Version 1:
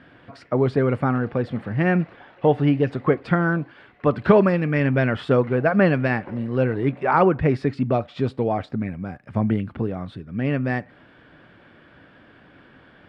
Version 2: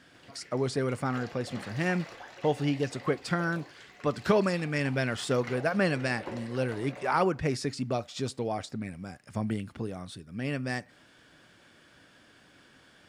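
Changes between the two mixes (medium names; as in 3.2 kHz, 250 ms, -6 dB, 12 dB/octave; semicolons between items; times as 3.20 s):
speech -10.5 dB; master: remove distance through air 480 m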